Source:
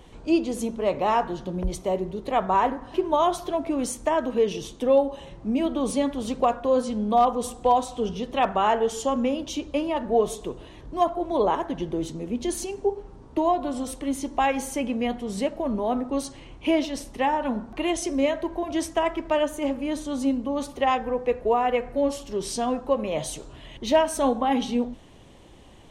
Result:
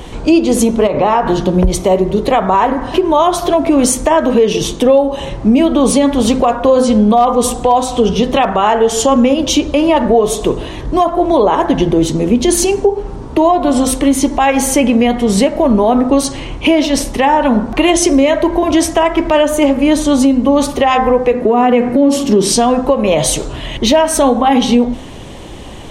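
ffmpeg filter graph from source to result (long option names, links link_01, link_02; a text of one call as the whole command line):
ffmpeg -i in.wav -filter_complex "[0:a]asettb=1/sr,asplit=3[link_01][link_02][link_03];[link_01]atrim=end=0.874[link_04];[link_02]atrim=start=0.87:end=1.27,asetpts=PTS-STARTPTS,afade=type=in:duration=0.004:curve=qsin,afade=type=out:start_time=0.396:duration=0.004:curve=qsin,lowpass=frequency=2700:poles=1,acompressor=threshold=-27dB:ratio=4:attack=3.2:release=140:knee=1:detection=peak[link_05];[link_03]atrim=start=1.266[link_06];[link_04][link_05]acrossfade=duration=0.004:curve1=hsin:curve2=qsin[link_07];[link_07][link_06]acrossfade=duration=0.004:curve1=qsin:curve2=hsin,asettb=1/sr,asplit=3[link_08][link_09][link_10];[link_08]atrim=end=21.334[link_11];[link_09]atrim=start=21.33:end=22.52,asetpts=PTS-STARTPTS,afade=type=in:duration=0.004:curve=qsin,afade=type=out:start_time=1.186:duration=0.004:curve=qsin,highpass=frequency=170:poles=1,equalizer=frequency=240:width_type=o:width=1.1:gain=14,acompressor=threshold=-19dB:ratio=6:attack=3.2:release=140:knee=1:detection=peak[link_12];[link_10]atrim=start=22.516[link_13];[link_11][link_12]acrossfade=duration=0.004:curve1=hsin:curve2=qsin[link_14];[link_14][link_13]acrossfade=duration=0.004:curve1=qsin:curve2=hsin,bandreject=frequency=86.23:width_type=h:width=4,bandreject=frequency=172.46:width_type=h:width=4,bandreject=frequency=258.69:width_type=h:width=4,bandreject=frequency=344.92:width_type=h:width=4,bandreject=frequency=431.15:width_type=h:width=4,bandreject=frequency=517.38:width_type=h:width=4,bandreject=frequency=603.61:width_type=h:width=4,bandreject=frequency=689.84:width_type=h:width=4,bandreject=frequency=776.07:width_type=h:width=4,bandreject=frequency=862.3:width_type=h:width=4,bandreject=frequency=948.53:width_type=h:width=4,bandreject=frequency=1034.76:width_type=h:width=4,bandreject=frequency=1120.99:width_type=h:width=4,bandreject=frequency=1207.22:width_type=h:width=4,bandreject=frequency=1293.45:width_type=h:width=4,bandreject=frequency=1379.68:width_type=h:width=4,bandreject=frequency=1465.91:width_type=h:width=4,bandreject=frequency=1552.14:width_type=h:width=4,bandreject=frequency=1638.37:width_type=h:width=4,bandreject=frequency=1724.6:width_type=h:width=4,bandreject=frequency=1810.83:width_type=h:width=4,bandreject=frequency=1897.06:width_type=h:width=4,bandreject=frequency=1983.29:width_type=h:width=4,bandreject=frequency=2069.52:width_type=h:width=4,bandreject=frequency=2155.75:width_type=h:width=4,bandreject=frequency=2241.98:width_type=h:width=4,acompressor=threshold=-27dB:ratio=3,alimiter=level_in=21dB:limit=-1dB:release=50:level=0:latency=1,volume=-1dB" out.wav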